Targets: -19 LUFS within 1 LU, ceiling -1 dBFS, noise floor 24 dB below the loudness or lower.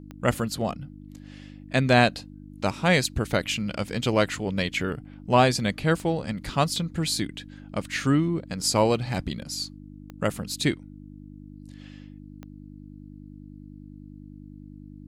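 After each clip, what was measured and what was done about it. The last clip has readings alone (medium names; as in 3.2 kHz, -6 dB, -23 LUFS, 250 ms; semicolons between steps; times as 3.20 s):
clicks found 5; hum 50 Hz; highest harmonic 300 Hz; hum level -42 dBFS; loudness -25.5 LUFS; peak level -5.5 dBFS; loudness target -19.0 LUFS
-> de-click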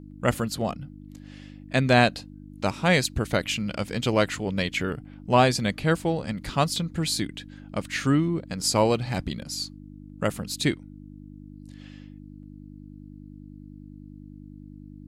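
clicks found 0; hum 50 Hz; highest harmonic 300 Hz; hum level -42 dBFS
-> de-hum 50 Hz, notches 6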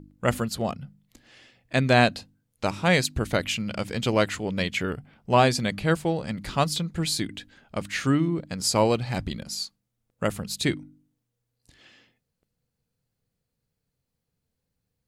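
hum not found; loudness -25.5 LUFS; peak level -6.0 dBFS; loudness target -19.0 LUFS
-> trim +6.5 dB; peak limiter -1 dBFS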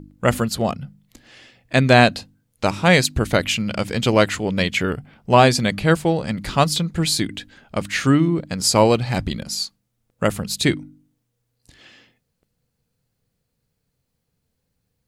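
loudness -19.5 LUFS; peak level -1.0 dBFS; noise floor -75 dBFS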